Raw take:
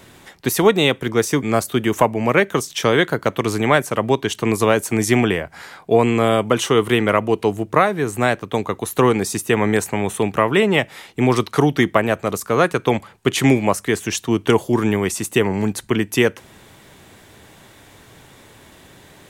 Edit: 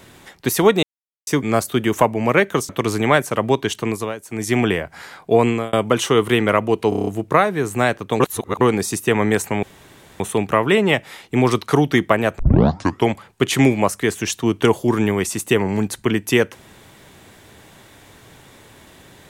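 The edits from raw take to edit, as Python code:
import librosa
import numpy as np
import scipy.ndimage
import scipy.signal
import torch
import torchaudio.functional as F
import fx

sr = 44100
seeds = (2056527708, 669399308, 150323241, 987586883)

y = fx.edit(x, sr, fx.silence(start_s=0.83, length_s=0.44),
    fx.cut(start_s=2.69, length_s=0.6),
    fx.fade_down_up(start_s=4.3, length_s=0.99, db=-16.0, fade_s=0.47),
    fx.fade_out_span(start_s=6.08, length_s=0.25),
    fx.stutter(start_s=7.49, slice_s=0.03, count=7),
    fx.reverse_span(start_s=8.62, length_s=0.41),
    fx.insert_room_tone(at_s=10.05, length_s=0.57),
    fx.tape_start(start_s=12.24, length_s=0.7), tone=tone)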